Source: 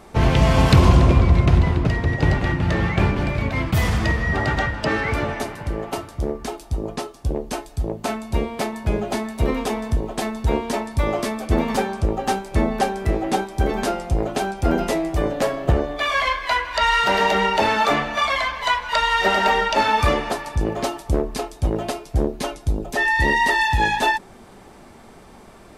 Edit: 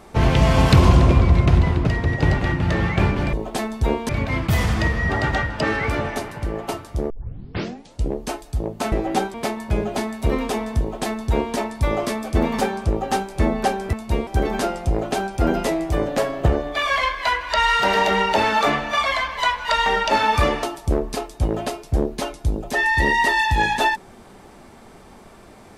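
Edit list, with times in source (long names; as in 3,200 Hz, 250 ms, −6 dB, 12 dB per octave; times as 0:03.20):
0:06.34: tape start 1.08 s
0:08.16–0:08.50: swap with 0:13.09–0:13.51
0:09.96–0:10.72: duplicate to 0:03.33
0:19.10–0:19.51: remove
0:20.28–0:20.85: remove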